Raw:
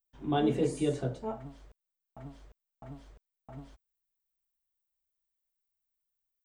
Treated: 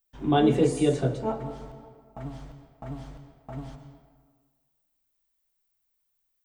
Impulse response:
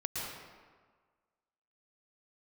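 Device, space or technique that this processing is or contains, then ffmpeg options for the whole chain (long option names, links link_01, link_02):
ducked reverb: -filter_complex "[0:a]asplit=3[link_01][link_02][link_03];[1:a]atrim=start_sample=2205[link_04];[link_02][link_04]afir=irnorm=-1:irlink=0[link_05];[link_03]apad=whole_len=284441[link_06];[link_05][link_06]sidechaincompress=threshold=-33dB:ratio=8:attack=16:release=1190,volume=-7dB[link_07];[link_01][link_07]amix=inputs=2:normalize=0,volume=6dB"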